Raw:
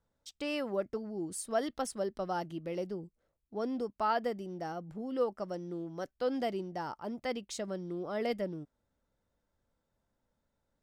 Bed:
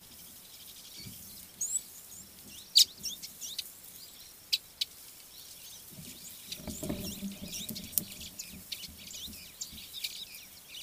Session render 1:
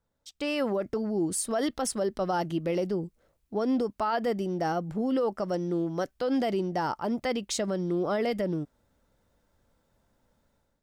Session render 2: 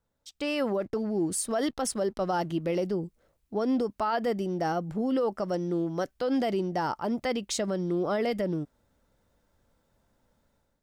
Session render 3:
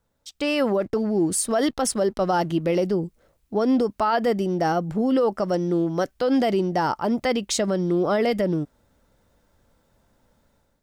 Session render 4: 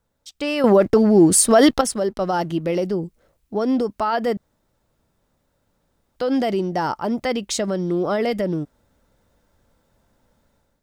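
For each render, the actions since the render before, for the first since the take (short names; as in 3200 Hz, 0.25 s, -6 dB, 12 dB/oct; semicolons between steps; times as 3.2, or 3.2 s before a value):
AGC gain up to 11 dB; limiter -20 dBFS, peak gain reduction 11.5 dB
0.8–2.62 backlash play -55 dBFS
gain +6.5 dB
0.64–1.81 gain +9 dB; 4.37–6.16 room tone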